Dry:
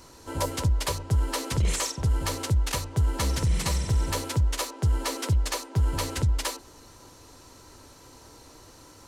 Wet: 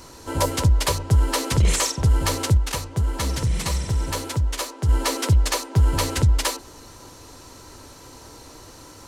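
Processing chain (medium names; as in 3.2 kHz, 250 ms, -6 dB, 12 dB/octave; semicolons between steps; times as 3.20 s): 2.57–4.89 s: flange 1.7 Hz, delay 0.8 ms, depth 8.1 ms, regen +79%; trim +6.5 dB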